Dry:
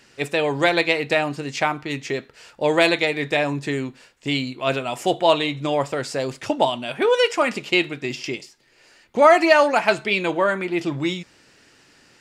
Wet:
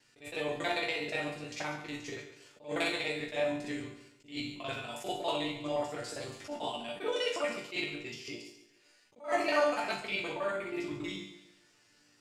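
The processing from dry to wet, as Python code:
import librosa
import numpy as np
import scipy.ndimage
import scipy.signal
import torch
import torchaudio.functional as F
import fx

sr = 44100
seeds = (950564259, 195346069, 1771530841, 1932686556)

y = fx.local_reverse(x, sr, ms=40.0)
y = fx.high_shelf(y, sr, hz=4300.0, db=6.0)
y = fx.resonator_bank(y, sr, root=43, chord='minor', decay_s=0.41)
y = fx.echo_feedback(y, sr, ms=140, feedback_pct=37, wet_db=-12)
y = fx.attack_slew(y, sr, db_per_s=190.0)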